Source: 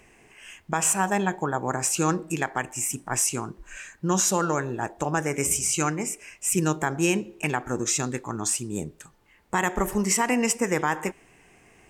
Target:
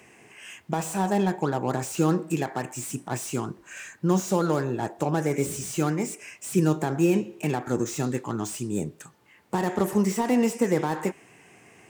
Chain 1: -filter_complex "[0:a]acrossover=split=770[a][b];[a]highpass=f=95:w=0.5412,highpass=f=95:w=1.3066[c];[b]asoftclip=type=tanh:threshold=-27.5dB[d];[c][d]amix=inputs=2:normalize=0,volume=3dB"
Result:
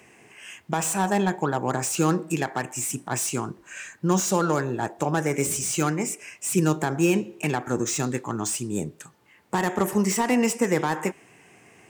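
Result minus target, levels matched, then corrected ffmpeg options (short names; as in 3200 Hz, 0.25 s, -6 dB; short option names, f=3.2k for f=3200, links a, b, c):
soft clip: distortion -5 dB
-filter_complex "[0:a]acrossover=split=770[a][b];[a]highpass=f=95:w=0.5412,highpass=f=95:w=1.3066[c];[b]asoftclip=type=tanh:threshold=-37.5dB[d];[c][d]amix=inputs=2:normalize=0,volume=3dB"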